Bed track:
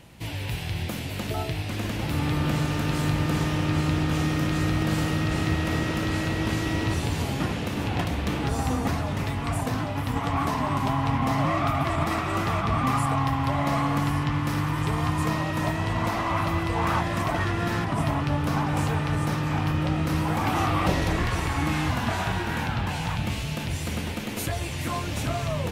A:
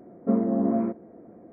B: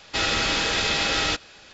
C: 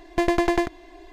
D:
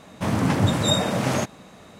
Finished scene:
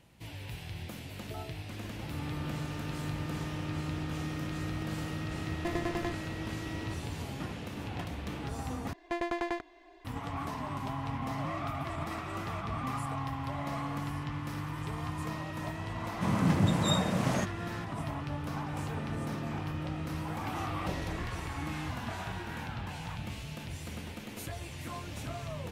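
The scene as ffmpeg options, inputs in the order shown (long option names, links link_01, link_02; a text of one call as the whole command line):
ffmpeg -i bed.wav -i cue0.wav -i cue1.wav -i cue2.wav -i cue3.wav -filter_complex "[3:a]asplit=2[link_01][link_02];[0:a]volume=-11.5dB[link_03];[link_02]asplit=2[link_04][link_05];[link_05]highpass=frequency=720:poles=1,volume=12dB,asoftclip=type=tanh:threshold=-9dB[link_06];[link_04][link_06]amix=inputs=2:normalize=0,lowpass=frequency=2700:poles=1,volume=-6dB[link_07];[4:a]equalizer=frequency=170:width=2.4:gain=8[link_08];[1:a]acompressor=threshold=-33dB:ratio=6:attack=3.2:release=140:knee=1:detection=peak[link_09];[link_03]asplit=2[link_10][link_11];[link_10]atrim=end=8.934[link_12];[link_07]atrim=end=1.12,asetpts=PTS-STARTPTS,volume=-13.5dB[link_13];[link_11]atrim=start=10.046[link_14];[link_01]atrim=end=1.12,asetpts=PTS-STARTPTS,volume=-14dB,afade=type=in:duration=0.004:curve=hsin,afade=type=out:start_time=1.116:duration=0.004:curve=hsin,adelay=5470[link_15];[link_08]atrim=end=1.99,asetpts=PTS-STARTPTS,volume=-9.5dB,afade=type=in:duration=0.004:curve=hsin,afade=type=out:start_time=1.986:duration=0.004:curve=hsin,adelay=16000[link_16];[link_09]atrim=end=1.52,asetpts=PTS-STARTPTS,volume=-6dB,afade=type=in:duration=0.004:curve=hsin,afade=type=out:start_time=1.516:duration=0.004:curve=hsin,adelay=18700[link_17];[link_12][link_13]acrossfade=duration=0.004:curve1=hsin:curve2=hsin[link_18];[link_18][link_14]acrossfade=duration=0.004:curve1=hsin:curve2=hsin[link_19];[link_19][link_15][link_16][link_17]amix=inputs=4:normalize=0" out.wav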